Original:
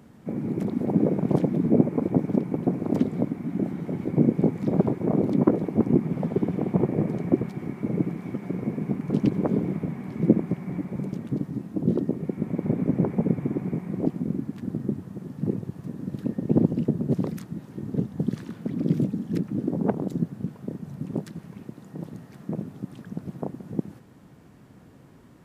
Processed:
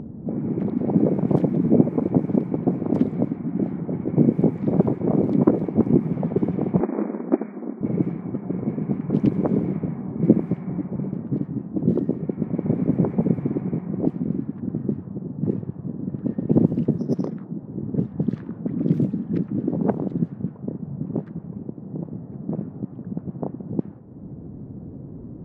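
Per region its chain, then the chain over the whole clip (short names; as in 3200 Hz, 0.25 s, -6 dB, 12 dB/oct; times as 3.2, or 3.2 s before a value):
6.8–7.81 minimum comb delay 0.53 ms + brick-wall FIR band-pass 190–2500 Hz
16.98–17.63 BPF 170–2500 Hz + careless resampling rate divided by 8×, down none, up hold
whole clip: low-pass opened by the level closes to 370 Hz, open at -18.5 dBFS; high shelf 2600 Hz -12 dB; upward compressor, threshold -27 dBFS; gain +3 dB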